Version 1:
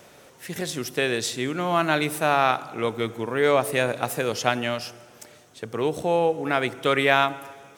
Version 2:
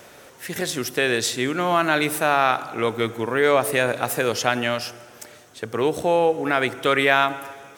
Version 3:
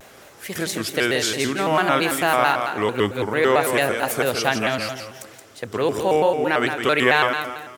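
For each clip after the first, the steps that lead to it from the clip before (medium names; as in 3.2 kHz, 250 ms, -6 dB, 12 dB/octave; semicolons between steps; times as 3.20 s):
fifteen-band graphic EQ 160 Hz -4 dB, 1.6 kHz +3 dB, 16 kHz +3 dB; in parallel at -0.5 dB: peak limiter -14 dBFS, peak gain reduction 11.5 dB; on the sum: trim -2 dB
on a send: feedback delay 169 ms, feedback 32%, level -7 dB; on the sum: vibrato with a chosen wave square 4.5 Hz, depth 160 cents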